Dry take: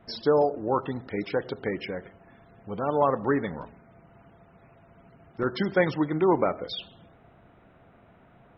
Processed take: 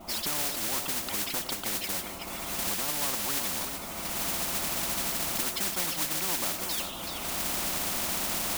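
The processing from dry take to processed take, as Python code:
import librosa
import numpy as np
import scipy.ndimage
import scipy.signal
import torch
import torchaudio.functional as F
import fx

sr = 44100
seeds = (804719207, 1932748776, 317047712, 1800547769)

p1 = fx.recorder_agc(x, sr, target_db=-20.0, rise_db_per_s=33.0, max_gain_db=30)
p2 = fx.dynamic_eq(p1, sr, hz=180.0, q=1.3, threshold_db=-39.0, ratio=4.0, max_db=6)
p3 = fx.fixed_phaser(p2, sr, hz=450.0, stages=6)
p4 = fx.mod_noise(p3, sr, seeds[0], snr_db=13)
p5 = p4 + fx.echo_single(p4, sr, ms=379, db=-16.0, dry=0)
p6 = fx.spectral_comp(p5, sr, ratio=4.0)
y = p6 * 10.0 ** (-3.5 / 20.0)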